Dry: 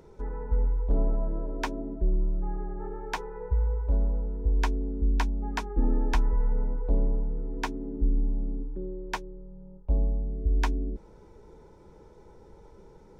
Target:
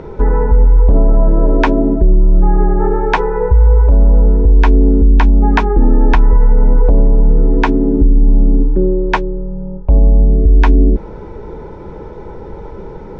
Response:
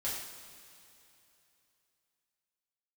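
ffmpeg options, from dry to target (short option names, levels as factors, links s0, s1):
-af "lowpass=2700,alimiter=level_in=15.8:limit=0.891:release=50:level=0:latency=1,volume=0.891"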